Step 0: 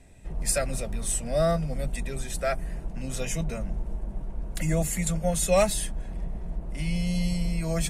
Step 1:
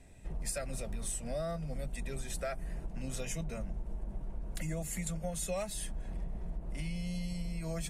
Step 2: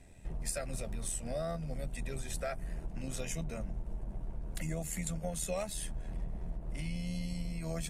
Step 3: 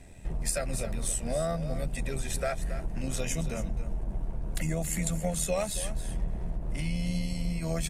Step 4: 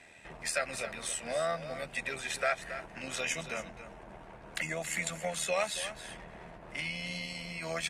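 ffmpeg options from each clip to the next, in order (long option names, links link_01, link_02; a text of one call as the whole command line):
ffmpeg -i in.wav -af "acompressor=threshold=-30dB:ratio=6,volume=-3.5dB" out.wav
ffmpeg -i in.wav -af "tremolo=f=79:d=0.462,volume=2dB" out.wav
ffmpeg -i in.wav -af "aecho=1:1:275:0.251,volume=6.5dB" out.wav
ffmpeg -i in.wav -af "bandpass=frequency=2000:width_type=q:width=0.9:csg=0,volume=7.5dB" out.wav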